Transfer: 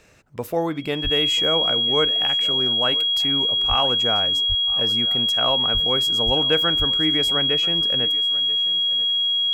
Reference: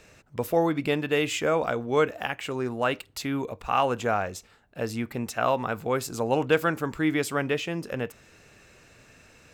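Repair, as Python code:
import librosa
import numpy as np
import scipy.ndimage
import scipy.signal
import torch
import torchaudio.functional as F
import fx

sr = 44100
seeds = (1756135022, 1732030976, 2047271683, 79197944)

y = fx.notch(x, sr, hz=3300.0, q=30.0)
y = fx.fix_deplosive(y, sr, at_s=(1.03, 3.68, 4.48, 5.73, 6.25, 6.78))
y = fx.fix_echo_inverse(y, sr, delay_ms=986, level_db=-19.0)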